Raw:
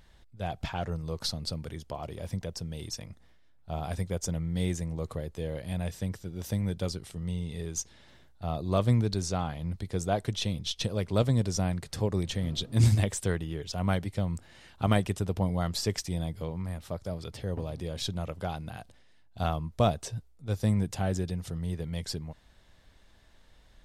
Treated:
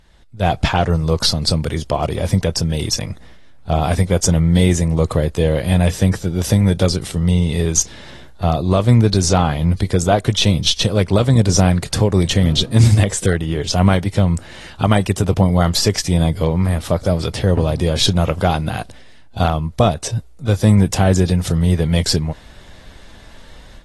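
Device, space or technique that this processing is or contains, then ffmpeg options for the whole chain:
low-bitrate web radio: -af "dynaudnorm=f=240:g=3:m=4.47,alimiter=limit=0.376:level=0:latency=1:release=341,volume=1.88" -ar 32000 -c:a aac -b:a 32k

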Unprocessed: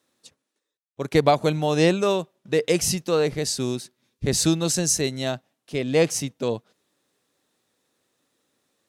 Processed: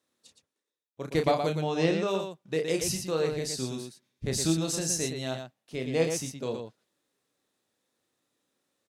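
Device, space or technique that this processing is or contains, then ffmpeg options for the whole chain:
slapback doubling: -filter_complex "[0:a]asettb=1/sr,asplit=3[s0][s1][s2];[s0]atrim=end=1.554[s3];[s1]atrim=start=1.55:end=2.08,asetpts=PTS-STARTPTS,afade=t=in:d=0.004:c=qsin,afade=t=out:st=0.526:d=0.004:c=qsin,lowpass=5900[s4];[s2]atrim=start=2.076[s5];[s3][s4]acrossfade=d=0.004:c1=hsin:c2=qsin[s6];[s6][s5]acrossfade=d=0.004:c1=qsin:c2=hsin,asplit=3[s7][s8][s9];[s8]adelay=31,volume=0.501[s10];[s9]adelay=117,volume=0.501[s11];[s7][s10][s11]amix=inputs=3:normalize=0,volume=0.376"

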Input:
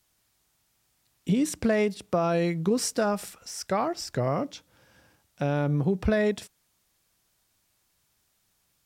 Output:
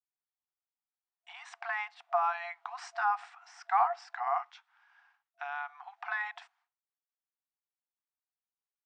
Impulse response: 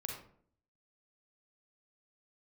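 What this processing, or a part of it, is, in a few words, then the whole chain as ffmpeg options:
hearing-loss simulation: -filter_complex "[0:a]lowpass=1500,agate=range=0.0224:threshold=0.001:ratio=3:detection=peak,asettb=1/sr,asplit=3[s0][s1][s2];[s0]atrim=end=4.384[s3];[s1]atrim=start=4.38:end=6.03,asetpts=PTS-STARTPTS,afade=t=in:d=0.004:c=qsin,afade=t=out:st=1.646:d=0.004:c=qsin,highpass=1200[s4];[s2]atrim=start=6.026[s5];[s3][s4]acrossfade=d=0.004:c1=hsin:c2=qsin[s6];[s6][s5]acrossfade=d=0.004:c1=qsin:c2=hsin,afftfilt=real='re*between(b*sr/4096,680,9100)':imag='im*between(b*sr/4096,680,9100)':win_size=4096:overlap=0.75,volume=1.68"

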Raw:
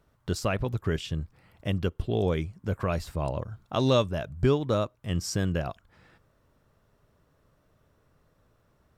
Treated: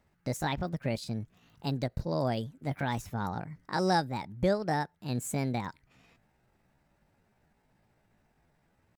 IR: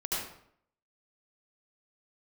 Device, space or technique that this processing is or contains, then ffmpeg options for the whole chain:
chipmunk voice: -filter_complex "[0:a]asettb=1/sr,asplit=3[s0][s1][s2];[s0]atrim=end=1.164[s3];[s1]atrim=start=1.16:end=3.04,asetpts=PTS-STARTPTS,afade=t=in:d=0.004:c=qsin,afade=t=out:st=1.876:d=0.004:c=qsin,highshelf=f=3800:g=3[s4];[s2]atrim=start=3.036[s5];[s3][s4]acrossfade=d=0.004:c1=hsin:c2=qsin[s6];[s6][s5]acrossfade=d=0.004:c1=qsin:c2=hsin,asetrate=62367,aresample=44100,atempo=0.707107,volume=0.631"

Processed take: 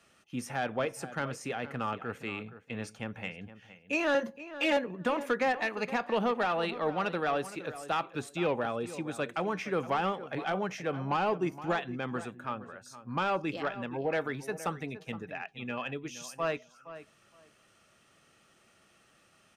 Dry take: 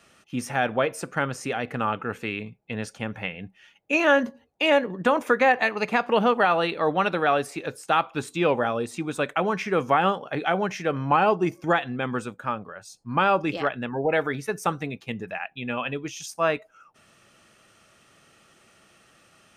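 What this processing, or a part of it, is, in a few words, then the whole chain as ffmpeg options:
one-band saturation: -filter_complex "[0:a]asettb=1/sr,asplit=3[s0][s1][s2];[s0]atrim=end=4.144[s3];[s1]atrim=start=4.14:end=4.77,asetpts=PTS-STARTPTS,afade=t=in:d=0.004:c=qsin,afade=t=out:st=0.626:d=0.004:c=qsin,aecho=1:1:5.8:0.92,atrim=end_sample=27783[s4];[s2]atrim=start=4.766[s5];[s3][s4]acrossfade=d=0.004:c1=hsin:c2=qsin[s6];[s6][s5]acrossfade=d=0.004:c1=qsin:c2=hsin,acrossover=split=420|3800[s7][s8][s9];[s8]asoftclip=type=tanh:threshold=0.141[s10];[s7][s10][s9]amix=inputs=3:normalize=0,asplit=2[s11][s12];[s12]adelay=467,lowpass=f=2900:p=1,volume=0.2,asplit=2[s13][s14];[s14]adelay=467,lowpass=f=2900:p=1,volume=0.18[s15];[s11][s13][s15]amix=inputs=3:normalize=0,volume=0.447"

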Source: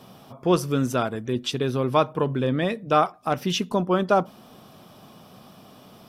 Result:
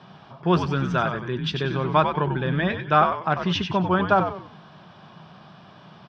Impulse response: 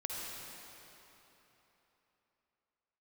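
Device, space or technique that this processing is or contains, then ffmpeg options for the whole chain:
frequency-shifting delay pedal into a guitar cabinet: -filter_complex "[0:a]asplit=5[s0][s1][s2][s3][s4];[s1]adelay=94,afreqshift=-91,volume=0.473[s5];[s2]adelay=188,afreqshift=-182,volume=0.16[s6];[s3]adelay=282,afreqshift=-273,volume=0.055[s7];[s4]adelay=376,afreqshift=-364,volume=0.0186[s8];[s0][s5][s6][s7][s8]amix=inputs=5:normalize=0,highpass=110,equalizer=f=160:t=q:w=4:g=8,equalizer=f=260:t=q:w=4:g=-8,equalizer=f=490:t=q:w=4:g=-7,equalizer=f=940:t=q:w=4:g=4,equalizer=f=1600:t=q:w=4:g=9,lowpass=f=4500:w=0.5412,lowpass=f=4500:w=1.3066"

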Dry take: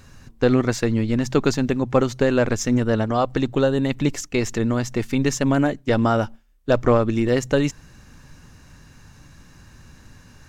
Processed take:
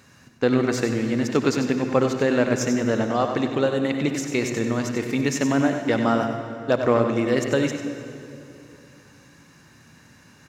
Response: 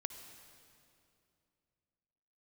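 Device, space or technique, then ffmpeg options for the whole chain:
PA in a hall: -filter_complex "[0:a]highpass=150,equalizer=f=2100:t=o:w=0.46:g=3.5,aecho=1:1:95:0.376[s0];[1:a]atrim=start_sample=2205[s1];[s0][s1]afir=irnorm=-1:irlink=0"

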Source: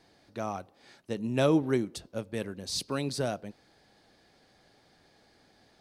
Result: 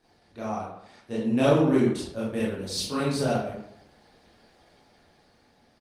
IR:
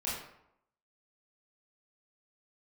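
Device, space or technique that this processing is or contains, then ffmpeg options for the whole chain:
speakerphone in a meeting room: -filter_complex "[1:a]atrim=start_sample=2205[s0];[0:a][s0]afir=irnorm=-1:irlink=0,asplit=2[s1][s2];[s2]adelay=230,highpass=300,lowpass=3400,asoftclip=type=hard:threshold=0.119,volume=0.0398[s3];[s1][s3]amix=inputs=2:normalize=0,dynaudnorm=f=210:g=11:m=1.58,volume=0.841" -ar 48000 -c:a libopus -b:a 24k

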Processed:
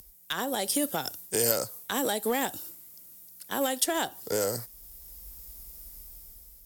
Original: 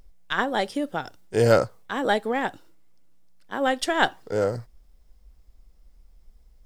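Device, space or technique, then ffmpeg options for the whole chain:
FM broadcast chain: -filter_complex "[0:a]highpass=42,dynaudnorm=f=200:g=7:m=2.51,acrossover=split=160|1100|2600[s0][s1][s2][s3];[s0]acompressor=threshold=0.00562:ratio=4[s4];[s1]acompressor=threshold=0.0794:ratio=4[s5];[s2]acompressor=threshold=0.0112:ratio=4[s6];[s3]acompressor=threshold=0.0178:ratio=4[s7];[s4][s5][s6][s7]amix=inputs=4:normalize=0,aemphasis=mode=production:type=50fm,alimiter=limit=0.119:level=0:latency=1:release=232,asoftclip=type=hard:threshold=0.0944,lowpass=f=15000:w=0.5412,lowpass=f=15000:w=1.3066,aemphasis=mode=production:type=50fm"

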